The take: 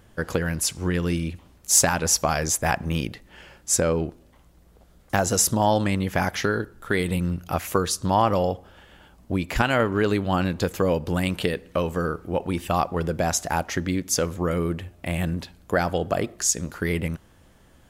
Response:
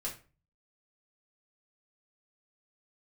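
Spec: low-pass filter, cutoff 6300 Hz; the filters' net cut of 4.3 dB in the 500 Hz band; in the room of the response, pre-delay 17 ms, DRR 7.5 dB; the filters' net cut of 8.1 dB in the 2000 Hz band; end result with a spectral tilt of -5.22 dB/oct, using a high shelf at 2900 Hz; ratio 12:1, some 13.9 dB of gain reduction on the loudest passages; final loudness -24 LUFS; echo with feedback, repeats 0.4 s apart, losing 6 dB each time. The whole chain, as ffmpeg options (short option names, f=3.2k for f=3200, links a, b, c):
-filter_complex "[0:a]lowpass=6.3k,equalizer=f=500:t=o:g=-4.5,equalizer=f=2k:t=o:g=-8,highshelf=f=2.9k:g=-8,acompressor=threshold=-33dB:ratio=12,aecho=1:1:400|800|1200|1600|2000|2400:0.501|0.251|0.125|0.0626|0.0313|0.0157,asplit=2[a][b];[1:a]atrim=start_sample=2205,adelay=17[c];[b][c]afir=irnorm=-1:irlink=0,volume=-8.5dB[d];[a][d]amix=inputs=2:normalize=0,volume=13dB"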